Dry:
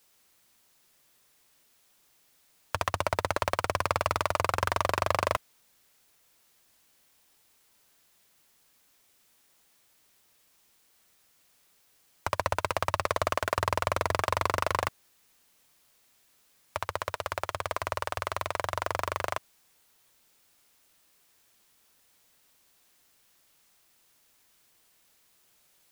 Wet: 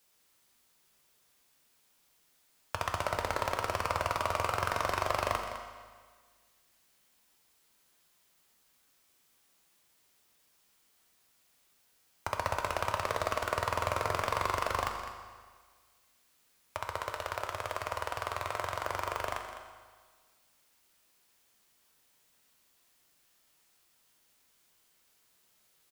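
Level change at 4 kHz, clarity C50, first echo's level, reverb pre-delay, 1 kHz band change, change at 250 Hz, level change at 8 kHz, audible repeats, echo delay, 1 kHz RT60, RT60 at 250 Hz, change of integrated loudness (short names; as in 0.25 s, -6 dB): -3.0 dB, 5.0 dB, -11.5 dB, 8 ms, -3.0 dB, -3.5 dB, -3.5 dB, 1, 0.206 s, 1.6 s, 1.6 s, -3.5 dB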